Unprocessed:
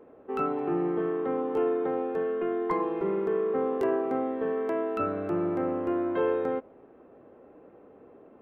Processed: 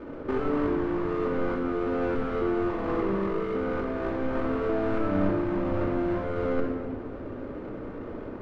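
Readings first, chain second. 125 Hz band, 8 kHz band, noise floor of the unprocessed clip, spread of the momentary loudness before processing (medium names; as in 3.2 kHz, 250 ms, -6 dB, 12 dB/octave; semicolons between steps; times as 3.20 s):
+8.5 dB, no reading, -54 dBFS, 3 LU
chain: square wave that keeps the level; low-pass 1.3 kHz 12 dB/octave; bass shelf 96 Hz +11.5 dB; compressor with a negative ratio -31 dBFS, ratio -1; simulated room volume 2100 m³, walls mixed, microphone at 2.6 m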